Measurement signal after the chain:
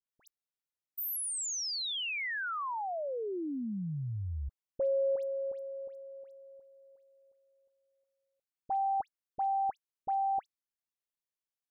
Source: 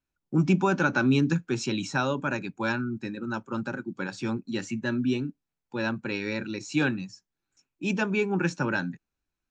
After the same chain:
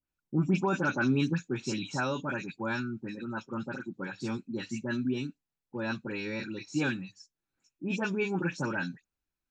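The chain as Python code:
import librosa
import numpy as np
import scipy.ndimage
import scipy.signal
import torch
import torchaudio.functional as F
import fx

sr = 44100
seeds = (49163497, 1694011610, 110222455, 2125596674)

y = fx.dispersion(x, sr, late='highs', ms=83.0, hz=2200.0)
y = F.gain(torch.from_numpy(y), -4.5).numpy()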